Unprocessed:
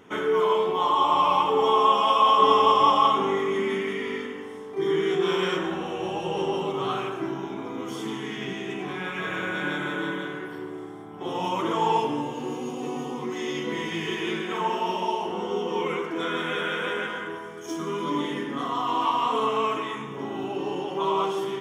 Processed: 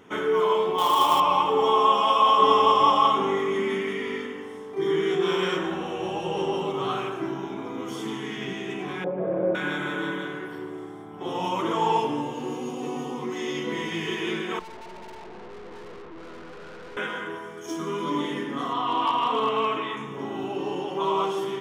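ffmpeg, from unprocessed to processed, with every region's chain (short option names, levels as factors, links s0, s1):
-filter_complex "[0:a]asettb=1/sr,asplit=3[s0][s1][s2];[s0]atrim=end=0.784[s3];[s1]atrim=start=0.78:end=1.2,asetpts=PTS-STARTPTS,afade=t=in:d=0.004:c=qsin,afade=t=out:st=0.416:d=0.004:c=qsin,highpass=f=51:w=0.5412,highpass=f=51:w=1.3066,highshelf=f=2700:g=8.5,acrusher=bits=4:mode=log:mix=0:aa=0.000001[s4];[s2]atrim=start=1.196[s5];[s3][s4]acrossfade=d=0.004:c1=hsin:c2=qsin[s6];[s6][s5]acrossfade=d=0.004:c1=qsin:c2=hsin,asettb=1/sr,asplit=3[s7][s8][s9];[s7]atrim=end=9.044[s10];[s8]atrim=start=9.04:end=9.55,asetpts=PTS-STARTPTS,afade=t=in:d=0.004:c=qsin,afade=t=out:st=0.506:d=0.004:c=qsin,lowpass=f=580:t=q:w=5.2,aecho=1:1:5.8:0.49,atrim=end_sample=22491[s11];[s9]atrim=start=9.546[s12];[s10][s11]acrossfade=d=0.004:c1=hsin:c2=qsin[s13];[s13][s12]acrossfade=d=0.004:c1=qsin:c2=hsin,asettb=1/sr,asplit=3[s14][s15][s16];[s14]atrim=end=14.594[s17];[s15]atrim=start=14.59:end=16.97,asetpts=PTS-STARTPTS,afade=t=in:d=0.004:c=qsin,afade=t=out:st=2.376:d=0.004:c=qsin,lowpass=1100,aemphasis=mode=reproduction:type=75kf,aeval=exprs='(tanh(112*val(0)+0.8)-tanh(0.8))/112':c=same[s18];[s16]atrim=start=16.966[s19];[s17][s18]acrossfade=d=0.004:c1=hsin:c2=qsin[s20];[s20][s19]acrossfade=d=0.004:c1=qsin:c2=hsin,asettb=1/sr,asplit=3[s21][s22][s23];[s21]atrim=end=18.734[s24];[s22]atrim=start=18.73:end=19.97,asetpts=PTS-STARTPTS,afade=t=in:d=0.004:c=qsin,afade=t=out:st=1.236:d=0.004:c=qsin,highshelf=f=4700:t=q:w=1.5:g=-7.5,volume=6.31,asoftclip=hard,volume=0.158[s25];[s23]atrim=start=19.966[s26];[s24][s25]acrossfade=d=0.004:c1=hsin:c2=qsin[s27];[s27][s26]acrossfade=d=0.004:c1=qsin:c2=hsin"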